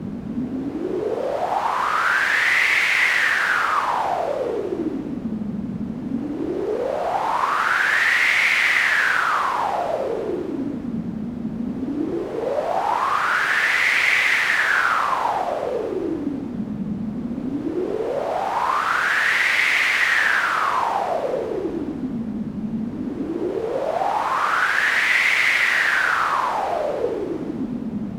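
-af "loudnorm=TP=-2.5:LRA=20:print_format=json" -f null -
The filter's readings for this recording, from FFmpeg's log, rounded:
"input_i" : "-20.3",
"input_tp" : "-5.0",
"input_lra" : "6.7",
"input_thresh" : "-30.3",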